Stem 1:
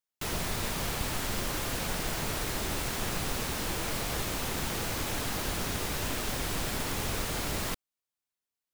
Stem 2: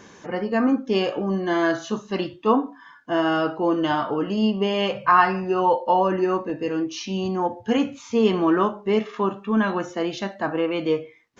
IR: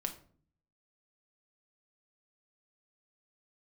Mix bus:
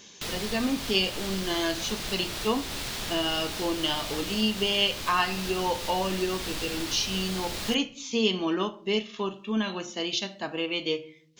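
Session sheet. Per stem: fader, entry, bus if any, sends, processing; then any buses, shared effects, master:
-5.0 dB, 0.00 s, send -10 dB, peaking EQ 3.9 kHz +9 dB 1.5 oct
-4.5 dB, 0.00 s, send -4.5 dB, resonant high shelf 2.2 kHz +13 dB, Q 1.5; upward expansion 1.5:1, over -31 dBFS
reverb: on, RT60 0.50 s, pre-delay 5 ms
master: compression 1.5:1, threshold -31 dBFS, peak gain reduction 7 dB

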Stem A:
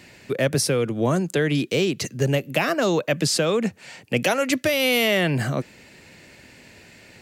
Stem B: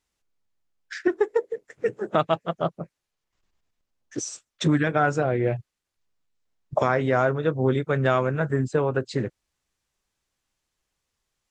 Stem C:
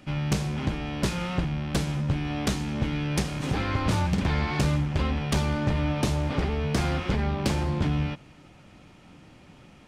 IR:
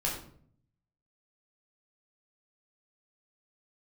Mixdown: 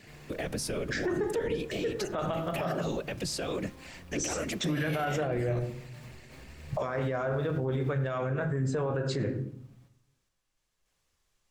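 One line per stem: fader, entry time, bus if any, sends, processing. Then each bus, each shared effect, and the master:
-7.5 dB, 0.00 s, send -22 dB, whisper effect; peak limiter -18.5 dBFS, peak gain reduction 11.5 dB
+1.0 dB, 0.00 s, send -9.5 dB, random-step tremolo 3.5 Hz, depth 55%
-18.5 dB, 0.00 s, send -10 dB, square wave that keeps the level; peak limiter -29 dBFS, peak gain reduction 57 dB; endless flanger 6.2 ms +0.36 Hz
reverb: on, RT60 0.55 s, pre-delay 10 ms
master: peak limiter -22.5 dBFS, peak gain reduction 16 dB

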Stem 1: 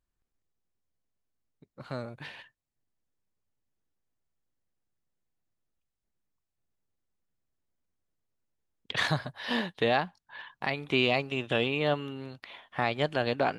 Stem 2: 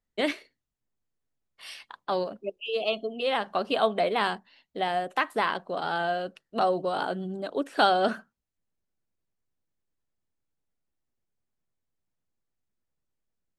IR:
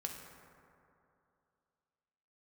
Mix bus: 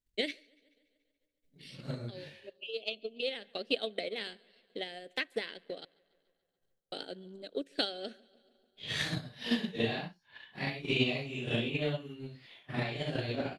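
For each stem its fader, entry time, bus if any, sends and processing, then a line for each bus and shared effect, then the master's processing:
-2.0 dB, 0.00 s, no send, no echo send, phase randomisation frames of 200 ms
-17.0 dB, 0.00 s, muted 5.85–6.92 s, send -19.5 dB, echo send -21.5 dB, graphic EQ 125/250/500/1000/2000/4000/8000 Hz -6/+5/+11/-5/+11/+11/+5 dB; auto duck -6 dB, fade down 1.35 s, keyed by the first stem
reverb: on, RT60 2.7 s, pre-delay 3 ms
echo: feedback delay 143 ms, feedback 57%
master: peaking EQ 1 kHz -14 dB 1.8 oct; transient shaper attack +9 dB, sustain -4 dB

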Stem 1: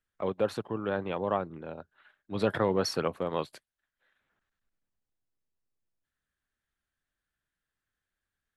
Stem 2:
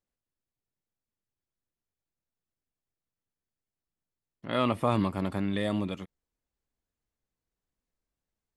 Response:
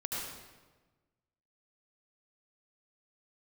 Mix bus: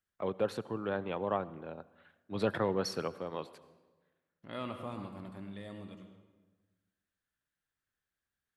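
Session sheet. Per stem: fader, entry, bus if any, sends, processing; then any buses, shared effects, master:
-4.0 dB, 0.00 s, send -21 dB, high-pass 60 Hz; auto duck -11 dB, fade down 1.95 s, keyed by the second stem
4.29 s -12 dB -> 4.96 s -20 dB, 0.00 s, send -5.5 dB, none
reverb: on, RT60 1.3 s, pre-delay 69 ms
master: none

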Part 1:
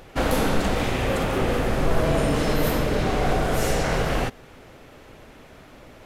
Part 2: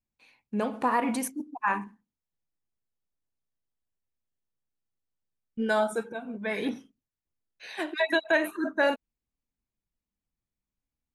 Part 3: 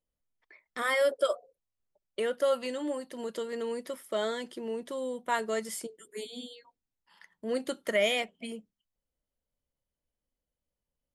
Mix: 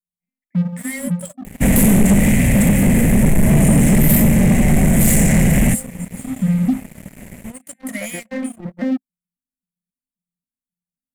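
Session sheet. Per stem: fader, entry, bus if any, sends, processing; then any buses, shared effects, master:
+1.5 dB, 1.45 s, no send, none
5.95 s -14.5 dB -> 6.42 s -4.5 dB, 0.00 s, no send, vocoder on a broken chord bare fifth, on F3, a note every 267 ms; low-pass 1.4 kHz 6 dB/octave; bass shelf 170 Hz +8 dB
-12.0 dB, 0.00 s, no send, treble shelf 2.5 kHz +7.5 dB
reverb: none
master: FFT filter 110 Hz 0 dB, 210 Hz +12 dB, 400 Hz -22 dB, 570 Hz -7 dB, 1.3 kHz -24 dB, 2 kHz +1 dB, 4.6 kHz -23 dB, 7.6 kHz +9 dB; waveshaping leveller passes 3

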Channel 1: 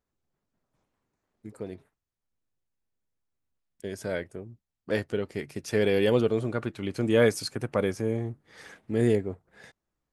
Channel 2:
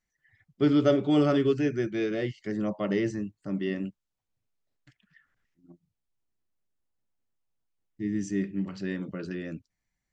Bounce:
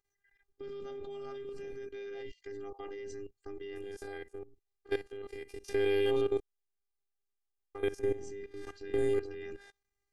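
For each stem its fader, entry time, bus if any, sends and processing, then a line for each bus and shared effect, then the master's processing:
+0.5 dB, 0.00 s, muted 6.40–7.75 s, no send, spectrogram pixelated in time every 50 ms
+0.5 dB, 0.00 s, no send, peak limiter -23 dBFS, peak gain reduction 11 dB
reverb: none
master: robot voice 400 Hz; level held to a coarse grid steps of 14 dB

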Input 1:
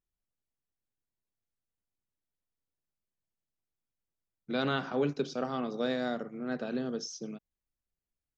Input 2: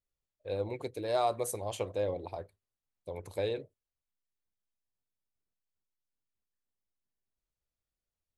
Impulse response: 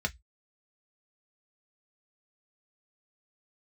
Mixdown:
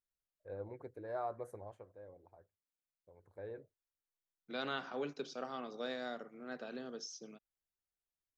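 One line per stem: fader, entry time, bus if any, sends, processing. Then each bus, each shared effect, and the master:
-6.0 dB, 0.00 s, no send, high-pass 520 Hz 6 dB/octave
1.62 s -10.5 dB -> 1.87 s -22 dB -> 3.21 s -22 dB -> 3.51 s -12 dB, 0.00 s, no send, FFT filter 1.1 kHz 0 dB, 1.6 kHz +6 dB, 2.8 kHz -19 dB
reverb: none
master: none

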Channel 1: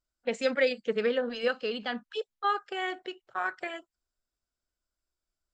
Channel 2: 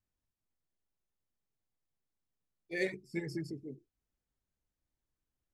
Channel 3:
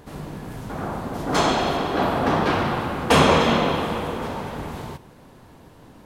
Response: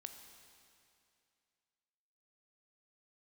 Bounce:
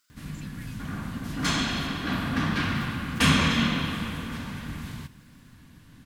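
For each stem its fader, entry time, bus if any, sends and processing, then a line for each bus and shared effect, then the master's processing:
-12.5 dB, 0.00 s, bus A, no send, level flattener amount 50%
-6.0 dB, 0.00 s, bus A, no send, integer overflow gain 29 dB
-1.5 dB, 0.10 s, no bus, no send, band-stop 1.3 kHz, Q 8.6
bus A: 0.0 dB, high-pass 490 Hz; compression, threshold -47 dBFS, peak gain reduction 13 dB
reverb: none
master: high-order bell 580 Hz -16 dB

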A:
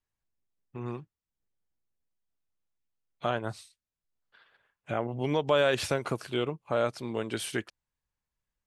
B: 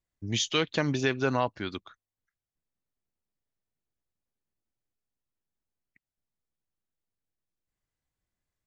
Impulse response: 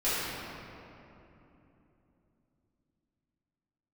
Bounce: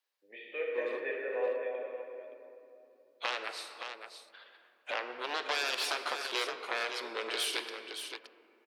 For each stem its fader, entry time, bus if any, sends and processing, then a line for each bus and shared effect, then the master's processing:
-5.0 dB, 0.00 s, send -17.5 dB, echo send -7 dB, Chebyshev shaper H 7 -7 dB, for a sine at -11.5 dBFS; compression 3:1, threshold -29 dBFS, peak gain reduction 9.5 dB; resonant high shelf 5.5 kHz -8 dB, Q 1.5
-1.5 dB, 0.00 s, send -4 dB, echo send -5 dB, cascade formant filter e; random flutter of the level, depth 55%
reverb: on, RT60 3.1 s, pre-delay 4 ms
echo: delay 570 ms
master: high-pass 420 Hz 24 dB/octave; treble shelf 4.6 kHz +11.5 dB

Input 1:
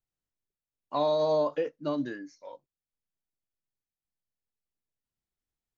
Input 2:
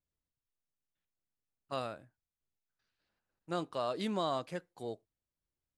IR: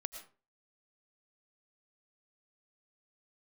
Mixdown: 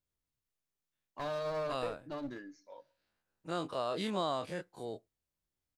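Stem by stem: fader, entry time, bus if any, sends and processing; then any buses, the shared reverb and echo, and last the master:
-8.5 dB, 0.25 s, send -14.5 dB, one-sided clip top -35 dBFS
-3.0 dB, 0.00 s, no send, every event in the spectrogram widened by 60 ms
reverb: on, RT60 0.35 s, pre-delay 70 ms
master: none

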